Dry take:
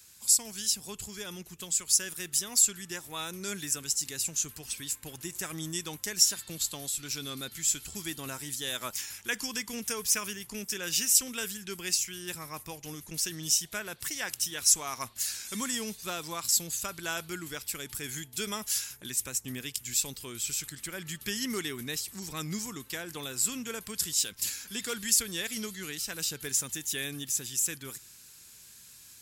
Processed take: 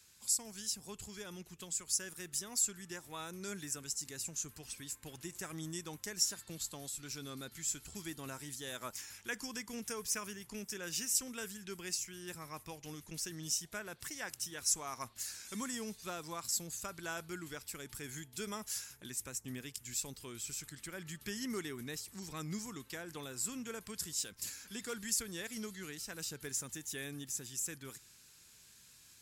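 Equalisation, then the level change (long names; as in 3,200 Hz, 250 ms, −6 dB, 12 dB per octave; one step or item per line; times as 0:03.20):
high-shelf EQ 9,600 Hz −9.5 dB
dynamic equaliser 3,200 Hz, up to −7 dB, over −48 dBFS, Q 1.1
−5.0 dB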